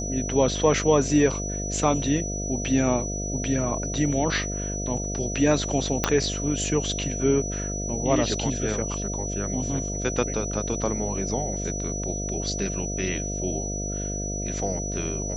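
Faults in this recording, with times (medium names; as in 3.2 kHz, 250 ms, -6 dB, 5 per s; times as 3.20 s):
buzz 50 Hz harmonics 14 -31 dBFS
whine 5.9 kHz -32 dBFS
6.04 s: pop -6 dBFS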